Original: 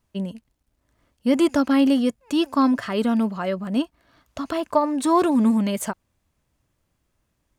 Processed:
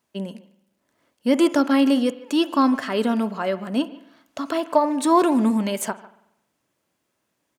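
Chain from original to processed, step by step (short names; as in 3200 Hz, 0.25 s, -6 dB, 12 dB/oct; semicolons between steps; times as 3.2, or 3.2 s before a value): HPF 240 Hz 12 dB/oct; notch 1200 Hz, Q 23; speakerphone echo 0.15 s, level -19 dB; reverb RT60 0.85 s, pre-delay 46 ms, DRR 15.5 dB; gain +2 dB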